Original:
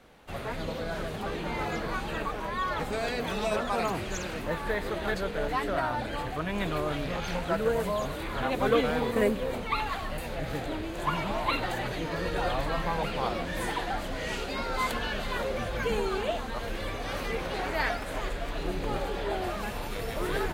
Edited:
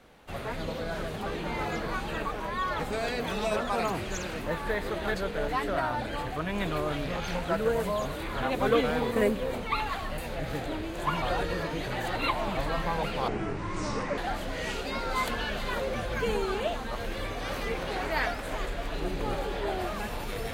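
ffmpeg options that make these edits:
-filter_complex "[0:a]asplit=5[a][b][c][d][e];[a]atrim=end=11.222[f];[b]atrim=start=11.218:end=12.572,asetpts=PTS-STARTPTS,areverse[g];[c]atrim=start=12.568:end=13.284[h];[d]atrim=start=13.28:end=13.81,asetpts=PTS-STARTPTS,asetrate=26019,aresample=44100,atrim=end_sample=39615,asetpts=PTS-STARTPTS[i];[e]atrim=start=13.806[j];[f][g]acrossfade=d=0.004:c1=hsin:c2=hsin[k];[k][h]acrossfade=d=0.004:c1=hsin:c2=hsin[l];[l][i]acrossfade=d=0.004:c1=hsin:c2=hsin[m];[m][j]acrossfade=d=0.004:c1=hsin:c2=hsin"

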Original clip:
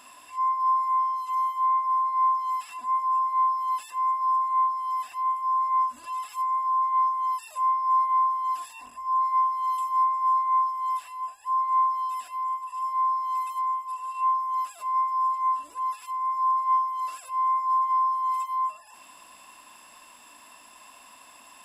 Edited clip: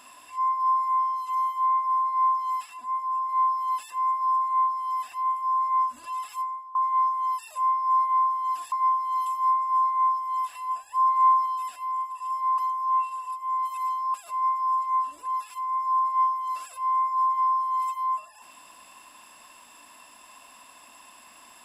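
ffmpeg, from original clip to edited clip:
-filter_complex "[0:a]asplit=9[a][b][c][d][e][f][g][h][i];[a]atrim=end=2.662[j];[b]atrim=start=2.658:end=3.292,asetpts=PTS-STARTPTS,volume=-3.5dB[k];[c]atrim=start=3.288:end=6.75,asetpts=PTS-STARTPTS,afade=t=out:st=3.082:d=0.38:c=qua:silence=0.105925[l];[d]atrim=start=6.75:end=8.722,asetpts=PTS-STARTPTS,afade=t=in:d=0.004:c=hsin:silence=0.105925[m];[e]atrim=start=9.238:end=11.072[n];[f]atrim=start=11.068:end=11.982,asetpts=PTS-STARTPTS,volume=3.5dB[o];[g]atrim=start=11.978:end=13.102[p];[h]atrim=start=13.098:end=14.662,asetpts=PTS-STARTPTS,areverse[q];[i]atrim=start=14.658[r];[j][k]acrossfade=d=0.004:c1=hsin:c2=hsin[s];[l][m]concat=n=2:v=0:a=1[t];[s][t]acrossfade=d=0.004:c1=hsin:c2=hsin[u];[u][n]acrossfade=d=0.004:c1=hsin:c2=hsin[v];[v][o]acrossfade=d=0.004:c1=hsin:c2=hsin[w];[w][p]acrossfade=d=0.004:c1=hsin:c2=hsin[x];[x][q]acrossfade=d=0.004:c1=hsin:c2=hsin[y];[y][r]acrossfade=d=0.004:c1=hsin:c2=hsin"

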